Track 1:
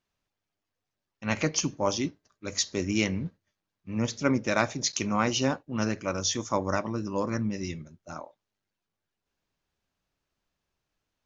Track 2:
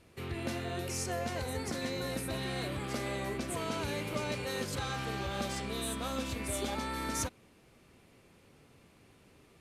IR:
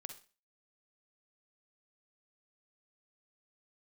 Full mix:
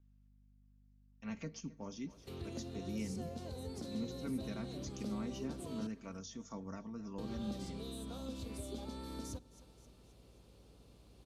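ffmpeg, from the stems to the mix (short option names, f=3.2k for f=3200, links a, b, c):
-filter_complex "[0:a]aecho=1:1:4.4:0.62,aeval=exprs='val(0)+0.00282*(sin(2*PI*50*n/s)+sin(2*PI*2*50*n/s)/2+sin(2*PI*3*50*n/s)/3+sin(2*PI*4*50*n/s)/4+sin(2*PI*5*50*n/s)/5)':c=same,volume=-13.5dB,asplit=2[a][b];[b]volume=-22dB[c];[1:a]equalizer=f=125:t=o:w=1:g=-4,equalizer=f=500:t=o:w=1:g=4,equalizer=f=2k:t=o:w=1:g=-11,equalizer=f=4k:t=o:w=1:g=7,aeval=exprs='val(0)+0.00112*(sin(2*PI*60*n/s)+sin(2*PI*2*60*n/s)/2+sin(2*PI*3*60*n/s)/3+sin(2*PI*4*60*n/s)/4+sin(2*PI*5*60*n/s)/5)':c=same,adelay=2100,volume=-5.5dB,asplit=3[d][e][f];[d]atrim=end=5.87,asetpts=PTS-STARTPTS,afade=t=out:st=5.866:d=0.004:c=hsin[g];[e]atrim=start=5.87:end=7.18,asetpts=PTS-STARTPTS,volume=0[h];[f]atrim=start=7.18,asetpts=PTS-STARTPTS,afade=t=in:d=0.004:c=hsin[i];[g][h][i]concat=n=3:v=0:a=1,asplit=3[j][k][l];[k]volume=-13dB[m];[l]volume=-24dB[n];[2:a]atrim=start_sample=2205[o];[m][o]afir=irnorm=-1:irlink=0[p];[c][n]amix=inputs=2:normalize=0,aecho=0:1:264|528|792|1056|1320|1584|1848:1|0.49|0.24|0.118|0.0576|0.0282|0.0138[q];[a][j][p][q]amix=inputs=4:normalize=0,acrossover=split=330[r][s];[s]acompressor=threshold=-51dB:ratio=4[t];[r][t]amix=inputs=2:normalize=0"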